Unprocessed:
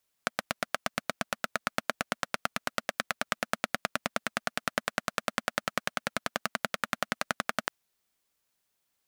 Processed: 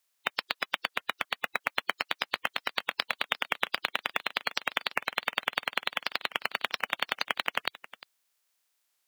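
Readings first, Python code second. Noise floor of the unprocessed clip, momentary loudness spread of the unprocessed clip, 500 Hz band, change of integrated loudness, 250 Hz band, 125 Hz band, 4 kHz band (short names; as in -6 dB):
-79 dBFS, 3 LU, -4.0 dB, +2.0 dB, -9.5 dB, -11.0 dB, +6.0 dB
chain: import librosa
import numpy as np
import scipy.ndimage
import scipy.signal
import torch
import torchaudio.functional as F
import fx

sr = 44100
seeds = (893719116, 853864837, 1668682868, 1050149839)

y = fx.spec_quant(x, sr, step_db=30)
y = fx.highpass(y, sr, hz=870.0, slope=6)
y = y + 10.0 ** (-17.5 / 20.0) * np.pad(y, (int(350 * sr / 1000.0), 0))[:len(y)]
y = fx.record_warp(y, sr, rpm=45.0, depth_cents=160.0)
y = y * 10.0 ** (3.0 / 20.0)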